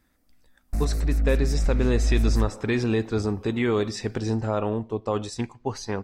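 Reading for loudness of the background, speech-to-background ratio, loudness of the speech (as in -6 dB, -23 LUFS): -26.5 LUFS, -0.5 dB, -27.0 LUFS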